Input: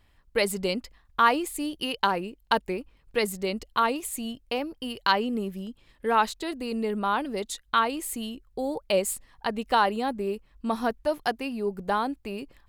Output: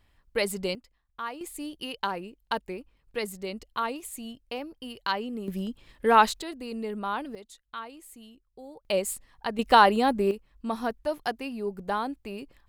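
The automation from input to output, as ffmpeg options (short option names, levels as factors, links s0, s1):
-af "asetnsamples=n=441:p=0,asendcmd='0.75 volume volume -15dB;1.41 volume volume -6dB;5.48 volume volume 4dB;6.42 volume volume -5dB;7.35 volume volume -15.5dB;8.85 volume volume -2.5dB;9.59 volume volume 5dB;10.31 volume volume -3dB',volume=0.75"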